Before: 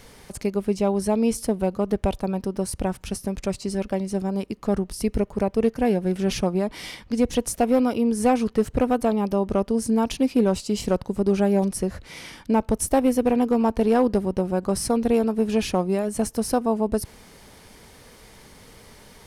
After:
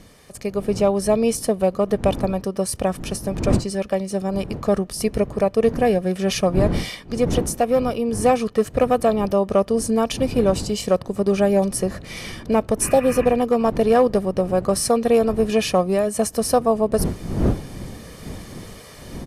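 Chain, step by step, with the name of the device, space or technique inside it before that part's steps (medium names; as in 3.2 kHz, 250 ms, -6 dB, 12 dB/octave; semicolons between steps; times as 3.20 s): high-pass 180 Hz 6 dB/octave; spectral replace 12.85–13.23 s, 1–3 kHz after; comb 1.7 ms, depth 47%; smartphone video outdoors (wind noise 230 Hz -34 dBFS; level rider gain up to 9.5 dB; trim -3.5 dB; AAC 96 kbps 32 kHz)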